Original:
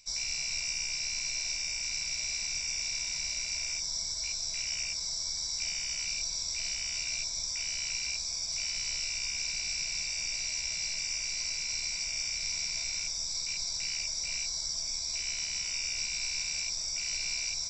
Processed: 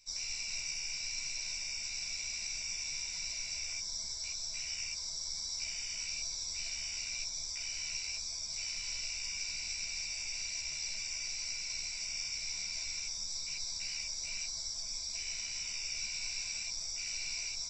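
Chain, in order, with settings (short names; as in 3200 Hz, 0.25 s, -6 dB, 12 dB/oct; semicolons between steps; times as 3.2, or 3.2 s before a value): ensemble effect; gain -2 dB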